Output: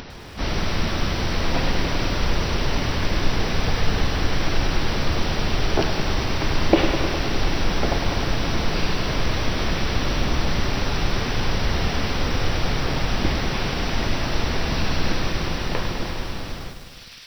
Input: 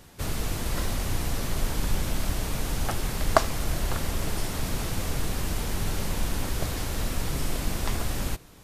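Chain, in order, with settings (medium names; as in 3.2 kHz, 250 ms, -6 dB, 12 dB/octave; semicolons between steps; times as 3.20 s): fade out at the end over 1.10 s; brick-wall FIR low-pass 12 kHz; bass shelf 87 Hz -5 dB; hum notches 50/100/150/200/250/300 Hz; speed mistake 15 ips tape played at 7.5 ips; treble shelf 6.5 kHz -8 dB; on a send: feedback echo behind a high-pass 689 ms, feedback 66%, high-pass 2.8 kHz, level -18.5 dB; on the sum: upward compressor, threshold -40 dBFS; loudness maximiser +10.5 dB; bit-crushed delay 102 ms, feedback 80%, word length 7-bit, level -9 dB; trim -1.5 dB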